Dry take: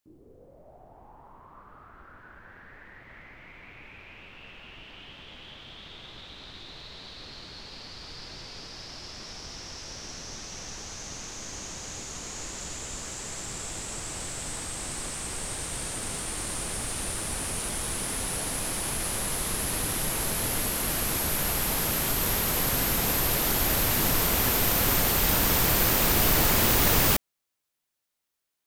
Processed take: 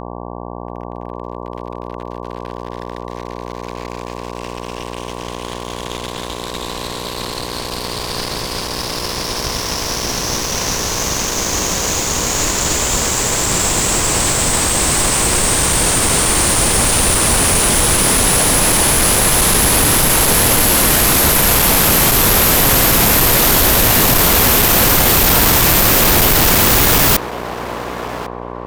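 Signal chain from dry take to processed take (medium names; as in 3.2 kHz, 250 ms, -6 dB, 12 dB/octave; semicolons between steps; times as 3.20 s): fuzz box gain 34 dB, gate -43 dBFS; mains buzz 60 Hz, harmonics 19, -32 dBFS -1 dB/octave; band-passed feedback delay 1098 ms, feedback 42%, band-pass 760 Hz, level -8 dB; trim +3.5 dB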